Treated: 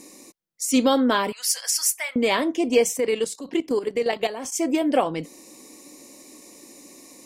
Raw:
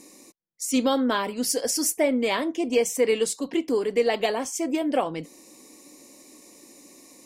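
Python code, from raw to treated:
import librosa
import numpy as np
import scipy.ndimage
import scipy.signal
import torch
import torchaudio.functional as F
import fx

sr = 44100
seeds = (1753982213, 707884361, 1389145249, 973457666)

y = fx.highpass(x, sr, hz=1100.0, slope=24, at=(1.32, 2.16))
y = fx.level_steps(y, sr, step_db=12, at=(2.92, 4.52))
y = y * librosa.db_to_amplitude(3.5)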